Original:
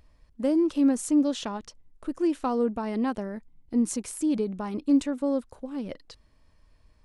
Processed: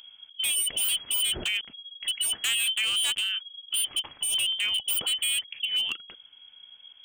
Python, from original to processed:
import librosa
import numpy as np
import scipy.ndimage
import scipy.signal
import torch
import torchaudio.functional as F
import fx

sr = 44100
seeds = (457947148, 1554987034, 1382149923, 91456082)

y = fx.freq_invert(x, sr, carrier_hz=3300)
y = 10.0 ** (-26.5 / 20.0) * (np.abs((y / 10.0 ** (-26.5 / 20.0) + 3.0) % 4.0 - 2.0) - 1.0)
y = fx.band_squash(y, sr, depth_pct=40, at=(5.23, 5.8))
y = y * 10.0 ** (5.5 / 20.0)